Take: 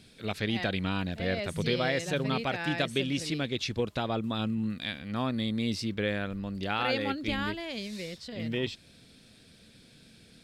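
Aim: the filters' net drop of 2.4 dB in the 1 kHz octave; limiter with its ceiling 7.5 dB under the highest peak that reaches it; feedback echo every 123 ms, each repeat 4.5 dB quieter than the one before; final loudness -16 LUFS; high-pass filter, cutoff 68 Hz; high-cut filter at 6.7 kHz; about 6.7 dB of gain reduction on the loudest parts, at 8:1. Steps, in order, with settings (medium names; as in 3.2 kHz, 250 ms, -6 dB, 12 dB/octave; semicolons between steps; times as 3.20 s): high-pass 68 Hz; low-pass 6.7 kHz; peaking EQ 1 kHz -3.5 dB; compression 8:1, threshold -32 dBFS; peak limiter -28 dBFS; feedback delay 123 ms, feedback 60%, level -4.5 dB; trim +20.5 dB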